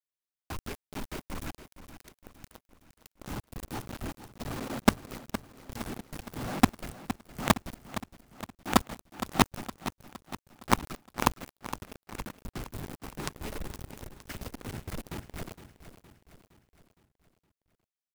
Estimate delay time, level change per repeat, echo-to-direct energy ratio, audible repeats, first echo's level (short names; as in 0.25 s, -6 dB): 0.464 s, -5.5 dB, -11.0 dB, 4, -12.5 dB